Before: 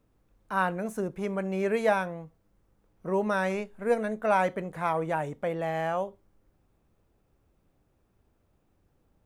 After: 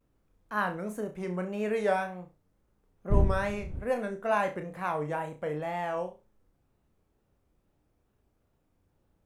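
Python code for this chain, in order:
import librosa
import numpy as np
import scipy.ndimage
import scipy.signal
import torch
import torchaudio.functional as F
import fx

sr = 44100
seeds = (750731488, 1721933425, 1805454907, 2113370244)

y = fx.dmg_wind(x, sr, seeds[0], corner_hz=90.0, level_db=-25.0, at=(3.1, 3.78), fade=0.02)
y = fx.wow_flutter(y, sr, seeds[1], rate_hz=2.1, depth_cents=150.0)
y = fx.room_flutter(y, sr, wall_m=5.7, rt60_s=0.27)
y = y * 10.0 ** (-4.0 / 20.0)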